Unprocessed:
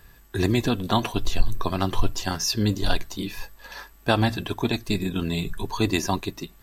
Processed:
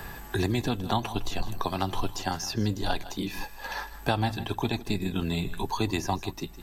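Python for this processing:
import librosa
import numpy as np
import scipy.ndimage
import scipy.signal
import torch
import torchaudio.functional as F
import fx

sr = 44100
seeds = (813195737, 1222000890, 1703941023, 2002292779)

y = fx.peak_eq(x, sr, hz=820.0, db=9.0, octaves=0.27)
y = y + 10.0 ** (-17.5 / 20.0) * np.pad(y, (int(158 * sr / 1000.0), 0))[:len(y)]
y = fx.band_squash(y, sr, depth_pct=70)
y = F.gain(torch.from_numpy(y), -5.5).numpy()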